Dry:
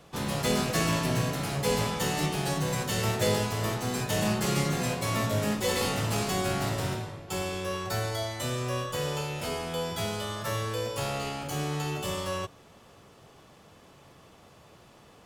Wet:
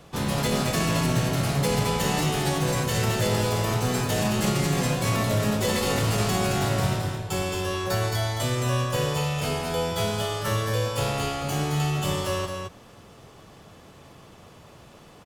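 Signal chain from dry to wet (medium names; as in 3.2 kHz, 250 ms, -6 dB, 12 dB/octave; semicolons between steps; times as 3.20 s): bass shelf 170 Hz +4 dB; peak limiter -19 dBFS, peak gain reduction 7.5 dB; on a send: delay 218 ms -5 dB; on the sum: trim +3.5 dB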